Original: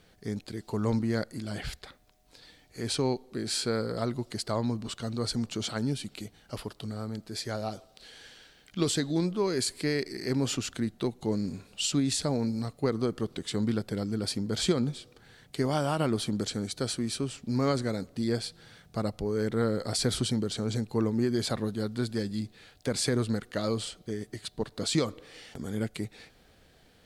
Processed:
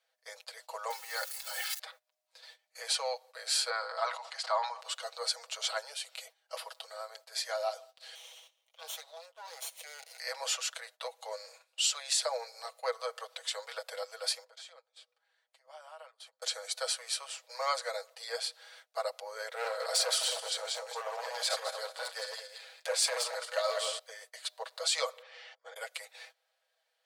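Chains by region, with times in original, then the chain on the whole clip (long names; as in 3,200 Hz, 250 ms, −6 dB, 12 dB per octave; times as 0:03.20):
0:00.90–0:01.79: spike at every zero crossing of −33.5 dBFS + parametric band 410 Hz −14.5 dB 0.64 octaves + comb filter 2.3 ms, depth 71%
0:03.70–0:04.81: high-pass with resonance 900 Hz, resonance Q 1.6 + high-frequency loss of the air 87 metres + level that may fall only so fast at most 88 dB per second
0:08.15–0:10.20: lower of the sound and its delayed copy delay 0.32 ms + downward compressor 2 to 1, threshold −46 dBFS + high-shelf EQ 9,200 Hz +2.5 dB
0:14.44–0:16.42: high-pass filter 1,000 Hz 6 dB per octave + spectral tilt −2.5 dB per octave + downward compressor 3 to 1, threshold −51 dBFS
0:19.53–0:23.99: feedback delay that plays each chunk backwards 109 ms, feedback 46%, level −4 dB + low-shelf EQ 100 Hz +11.5 dB + gain into a clipping stage and back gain 21 dB
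0:25.22–0:25.76: upward compression, threshold −53 dBFS + volume swells 136 ms + high-frequency loss of the air 170 metres
whole clip: Butterworth high-pass 510 Hz 96 dB per octave; noise gate −55 dBFS, range −17 dB; comb filter 6.2 ms, depth 67%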